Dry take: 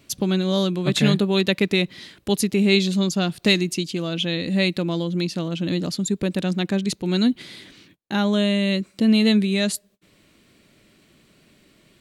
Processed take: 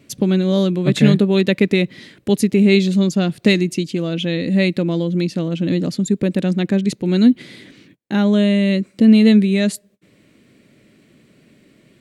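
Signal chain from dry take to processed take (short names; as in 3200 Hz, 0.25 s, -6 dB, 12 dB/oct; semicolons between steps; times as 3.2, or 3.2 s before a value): graphic EQ 125/250/500/2000/8000 Hz +9/+9/+8/+7/+3 dB; gain -4.5 dB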